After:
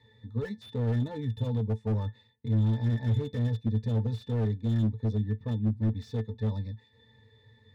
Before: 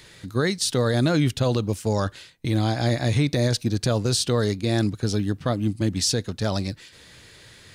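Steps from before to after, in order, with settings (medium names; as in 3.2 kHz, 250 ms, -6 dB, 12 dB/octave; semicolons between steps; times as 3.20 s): pitch-class resonator A, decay 0.12 s; slew-rate limiter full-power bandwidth 14 Hz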